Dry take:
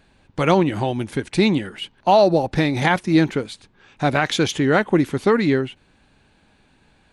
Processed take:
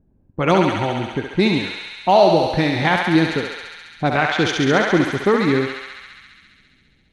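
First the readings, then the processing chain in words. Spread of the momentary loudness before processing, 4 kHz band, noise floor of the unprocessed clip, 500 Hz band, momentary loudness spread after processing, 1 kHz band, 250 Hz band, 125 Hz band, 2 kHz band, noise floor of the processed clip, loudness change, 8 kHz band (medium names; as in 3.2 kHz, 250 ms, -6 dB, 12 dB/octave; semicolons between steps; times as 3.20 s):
9 LU, +2.5 dB, -58 dBFS, +1.0 dB, 14 LU, +2.5 dB, +0.5 dB, 0.0 dB, +3.5 dB, -58 dBFS, +1.0 dB, -1.5 dB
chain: level-controlled noise filter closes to 310 Hz, open at -13 dBFS; on a send: thinning echo 68 ms, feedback 85%, high-pass 600 Hz, level -3 dB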